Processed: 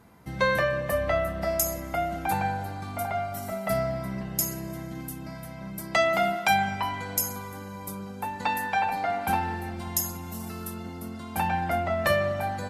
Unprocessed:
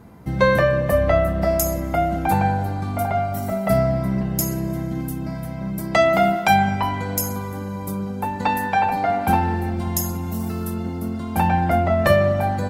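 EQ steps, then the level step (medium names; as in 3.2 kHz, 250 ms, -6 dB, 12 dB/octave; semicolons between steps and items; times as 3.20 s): brick-wall FIR low-pass 14 kHz; tilt shelf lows -5 dB, about 790 Hz; -7.0 dB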